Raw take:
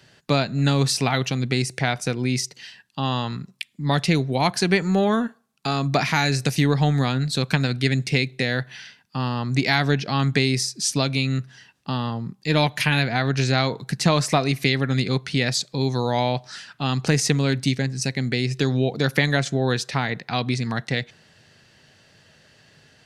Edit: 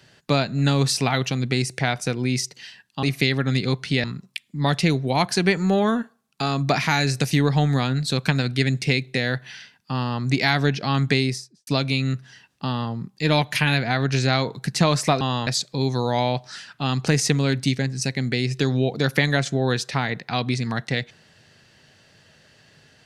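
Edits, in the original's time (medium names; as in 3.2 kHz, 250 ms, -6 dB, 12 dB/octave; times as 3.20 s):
3.03–3.29 s: swap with 14.46–15.47 s
10.41–10.92 s: studio fade out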